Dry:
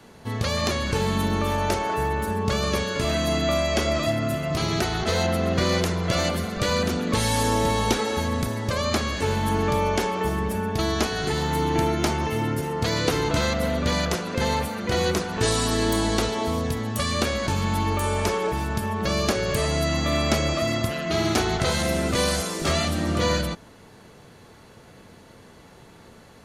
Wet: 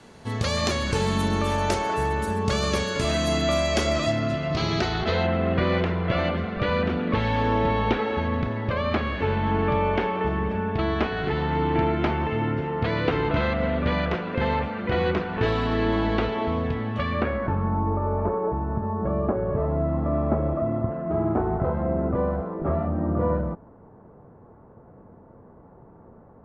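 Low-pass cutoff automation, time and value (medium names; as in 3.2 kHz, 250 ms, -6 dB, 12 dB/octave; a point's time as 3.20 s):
low-pass 24 dB/octave
3.91 s 10 kHz
4.36 s 5.1 kHz
4.90 s 5.1 kHz
5.33 s 2.9 kHz
16.97 s 2.9 kHz
17.83 s 1.1 kHz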